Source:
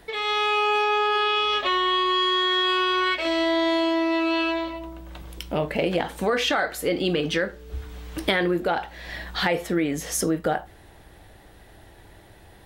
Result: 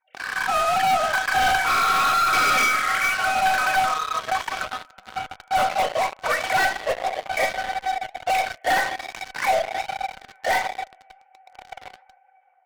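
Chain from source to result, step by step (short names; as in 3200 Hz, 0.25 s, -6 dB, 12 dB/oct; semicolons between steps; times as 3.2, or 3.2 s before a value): sine-wave speech; steep high-pass 520 Hz 96 dB/oct; on a send: diffused feedback echo 1.243 s, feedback 40%, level -16 dB; on the sum: formant shift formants +4 st; LPF 2000 Hz 24 dB/oct; resonator 760 Hz, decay 0.27 s, mix 90%; spring tank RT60 1.2 s, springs 35 ms, chirp 45 ms, DRR 11 dB; in parallel at -5 dB: fuzz box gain 44 dB, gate -52 dBFS; on the sum: AGC gain up to 7.5 dB; soft clip -15.5 dBFS, distortion -14 dB; flange 1.3 Hz, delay 0.5 ms, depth 4.9 ms, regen +84%; gain +3 dB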